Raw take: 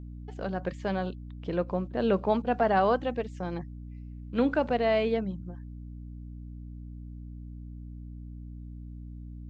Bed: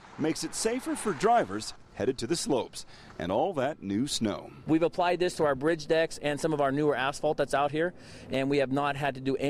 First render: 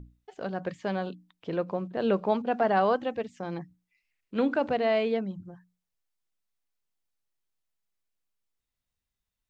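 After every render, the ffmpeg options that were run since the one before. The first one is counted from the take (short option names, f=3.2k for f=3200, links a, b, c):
-af "bandreject=f=60:t=h:w=6,bandreject=f=120:t=h:w=6,bandreject=f=180:t=h:w=6,bandreject=f=240:t=h:w=6,bandreject=f=300:t=h:w=6"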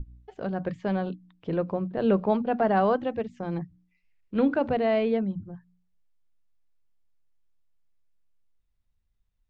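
-af "aemphasis=mode=reproduction:type=bsi,bandreject=f=60:t=h:w=6,bandreject=f=120:t=h:w=6,bandreject=f=180:t=h:w=6,bandreject=f=240:t=h:w=6,bandreject=f=300:t=h:w=6"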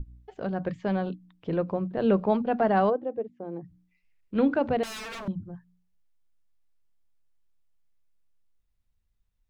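-filter_complex "[0:a]asplit=3[a][b][c];[a]afade=t=out:st=2.89:d=0.02[d];[b]bandpass=f=430:t=q:w=1.6,afade=t=in:st=2.89:d=0.02,afade=t=out:st=3.63:d=0.02[e];[c]afade=t=in:st=3.63:d=0.02[f];[d][e][f]amix=inputs=3:normalize=0,asettb=1/sr,asplit=3[g][h][i];[g]atrim=end=4.834[j];[h]atrim=start=4.83:end=5.28,asetpts=PTS-STARTPTS,afade=t=in:d=0.004:c=qsin,afade=t=out:st=0.446:d=0.004:c=qsin,aeval=exprs='0.0211*(abs(mod(val(0)/0.0211+3,4)-2)-1)':c=same[k];[i]atrim=start=5.276[l];[j][k]acrossfade=d=0.004:c1=hsin:c2=qsin[m];[m][l]acrossfade=d=0.004:c1=qsin:c2=hsin"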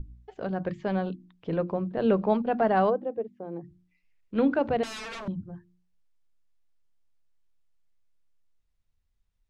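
-af "lowpass=8.4k,bandreject=f=50:t=h:w=6,bandreject=f=100:t=h:w=6,bandreject=f=150:t=h:w=6,bandreject=f=200:t=h:w=6,bandreject=f=250:t=h:w=6,bandreject=f=300:t=h:w=6,bandreject=f=350:t=h:w=6"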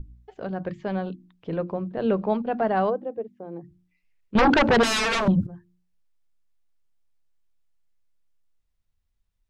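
-filter_complex "[0:a]asettb=1/sr,asplit=3[a][b][c];[a]atrim=end=4.354[d];[b]atrim=start=4.35:end=5.47,asetpts=PTS-STARTPTS,afade=t=in:d=0.004:c=qsin,afade=t=out:st=1.116:d=0.004:c=qsin,aeval=exprs='0.211*sin(PI/2*3.55*val(0)/0.211)':c=same[e];[c]atrim=start=5.466[f];[d][e]acrossfade=d=0.004:c1=hsin:c2=qsin[g];[g][f]acrossfade=d=0.004:c1=qsin:c2=hsin"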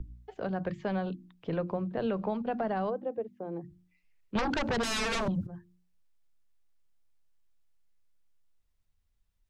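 -filter_complex "[0:a]alimiter=limit=-16.5dB:level=0:latency=1:release=195,acrossover=split=180|530|5000[a][b][c][d];[a]acompressor=threshold=-34dB:ratio=4[e];[b]acompressor=threshold=-37dB:ratio=4[f];[c]acompressor=threshold=-33dB:ratio=4[g];[d]acompressor=threshold=-38dB:ratio=4[h];[e][f][g][h]amix=inputs=4:normalize=0"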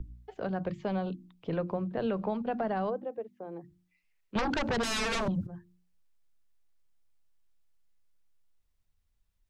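-filter_complex "[0:a]asettb=1/sr,asplit=3[a][b][c];[a]atrim=end=0.624[d];[b]atrim=start=0.62:end=1.51,asetpts=PTS-STARTPTS,afade=t=in:d=0.004:c=qsin,afade=t=out:st=0.886:d=0.004:c=qsin,equalizer=f=1.7k:w=3.7:g=-6.5[e];[c]atrim=start=1.506[f];[d][e]acrossfade=d=0.004:c1=hsin:c2=qsin[g];[g][f]acrossfade=d=0.004:c1=qsin:c2=hsin,asettb=1/sr,asplit=3[h][i][j];[h]atrim=end=3.054[k];[i]atrim=start=3.05:end=4.36,asetpts=PTS-STARTPTS,afade=t=in:d=0.004:c=qsin,afade=t=out:st=1.306:d=0.004:c=qsin,lowshelf=f=380:g=-8[l];[j]atrim=start=4.356[m];[k][l]acrossfade=d=0.004:c1=hsin:c2=qsin[n];[n][m]acrossfade=d=0.004:c1=qsin:c2=hsin"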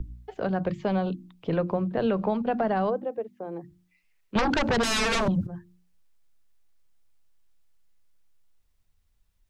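-af "volume=6dB"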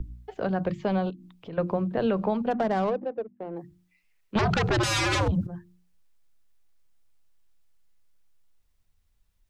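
-filter_complex "[0:a]asettb=1/sr,asplit=3[a][b][c];[a]atrim=end=1.104[d];[b]atrim=start=1.1:end=1.58,asetpts=PTS-STARTPTS,afade=t=in:d=0.004:c=qsin,afade=t=out:st=0.476:d=0.004:c=qsin,acompressor=threshold=-45dB:ratio=2:attack=3.2:release=140:knee=1:detection=peak[e];[c]atrim=start=1.576[f];[d][e]acrossfade=d=0.004:c1=hsin:c2=qsin[g];[g][f]acrossfade=d=0.004:c1=qsin:c2=hsin,asplit=3[h][i][j];[h]afade=t=out:st=2.5:d=0.02[k];[i]adynamicsmooth=sensitivity=3:basefreq=710,afade=t=in:st=2.5:d=0.02,afade=t=out:st=3.55:d=0.02[l];[j]afade=t=in:st=3.55:d=0.02[m];[k][l][m]amix=inputs=3:normalize=0,asplit=3[n][o][p];[n]afade=t=out:st=4.38:d=0.02[q];[o]afreqshift=-110,afade=t=in:st=4.38:d=0.02,afade=t=out:st=5.31:d=0.02[r];[p]afade=t=in:st=5.31:d=0.02[s];[q][r][s]amix=inputs=3:normalize=0"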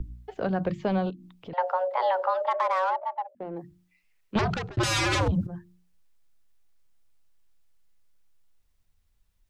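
-filter_complex "[0:a]asettb=1/sr,asplit=3[a][b][c];[a]atrim=end=1.534[d];[b]atrim=start=1.53:end=3.35,asetpts=PTS-STARTPTS,afade=t=in:d=0.004:c=qsin,afade=t=out:st=1.816:d=0.004:c=qsin,afreqshift=370[e];[c]atrim=start=3.346[f];[d][e]acrossfade=d=0.004:c1=hsin:c2=qsin[g];[g][f]acrossfade=d=0.004:c1=qsin:c2=hsin,asplit=2[h][i];[h]atrim=end=4.77,asetpts=PTS-STARTPTS,afade=t=out:st=4.36:d=0.41[j];[i]atrim=start=4.77,asetpts=PTS-STARTPTS,afade=t=in:d=0.004:c=hsin[k];[j][k]concat=n=2:v=0:a=1"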